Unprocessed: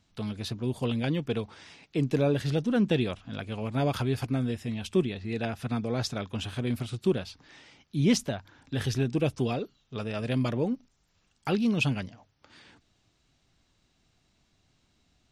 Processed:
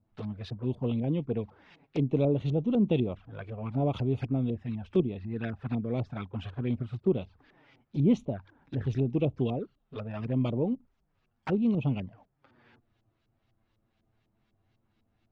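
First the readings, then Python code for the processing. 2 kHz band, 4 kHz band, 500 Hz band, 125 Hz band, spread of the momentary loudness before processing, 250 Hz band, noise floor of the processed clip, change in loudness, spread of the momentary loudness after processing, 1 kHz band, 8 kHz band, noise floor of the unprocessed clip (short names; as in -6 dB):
-10.0 dB, -12.0 dB, -1.0 dB, 0.0 dB, 11 LU, -0.5 dB, -76 dBFS, -1.0 dB, 12 LU, -4.5 dB, under -20 dB, -71 dBFS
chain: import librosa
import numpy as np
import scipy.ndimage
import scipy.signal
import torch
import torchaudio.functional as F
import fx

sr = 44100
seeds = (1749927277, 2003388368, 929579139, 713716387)

y = fx.filter_lfo_lowpass(x, sr, shape='saw_up', hz=4.0, low_hz=600.0, high_hz=3400.0, q=0.77)
y = fx.env_flanger(y, sr, rest_ms=9.3, full_db=-25.0)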